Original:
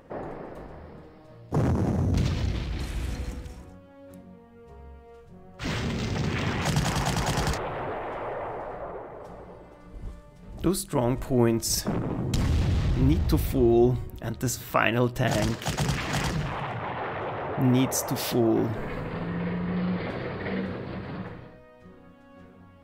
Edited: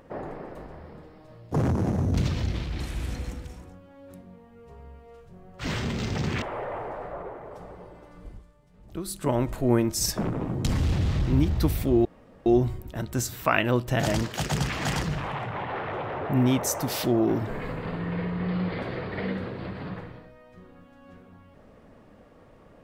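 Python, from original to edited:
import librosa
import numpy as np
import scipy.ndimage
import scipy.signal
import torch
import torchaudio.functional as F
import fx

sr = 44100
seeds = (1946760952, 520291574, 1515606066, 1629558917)

y = fx.edit(x, sr, fx.cut(start_s=6.42, length_s=1.69),
    fx.fade_down_up(start_s=9.96, length_s=0.89, db=-10.0, fade_s=0.12),
    fx.insert_room_tone(at_s=13.74, length_s=0.41), tone=tone)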